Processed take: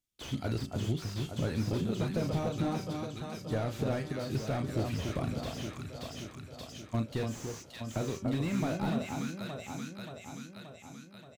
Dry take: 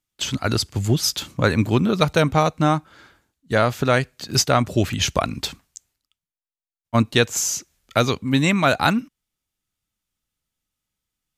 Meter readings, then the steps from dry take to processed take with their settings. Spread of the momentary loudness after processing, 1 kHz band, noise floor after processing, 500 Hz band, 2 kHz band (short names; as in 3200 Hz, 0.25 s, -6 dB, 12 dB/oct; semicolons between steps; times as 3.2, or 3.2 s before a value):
13 LU, -17.5 dB, -53 dBFS, -13.5 dB, -19.0 dB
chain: bell 1200 Hz -7.5 dB 1.5 oct; de-hum 191.2 Hz, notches 17; compressor, threshold -23 dBFS, peak gain reduction 10 dB; on a send: echo with dull and thin repeats by turns 0.289 s, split 1200 Hz, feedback 78%, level -4.5 dB; on the sum: vibrato 11 Hz 5.4 cents; doubler 36 ms -10 dB; slew limiter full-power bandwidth 46 Hz; gain -6 dB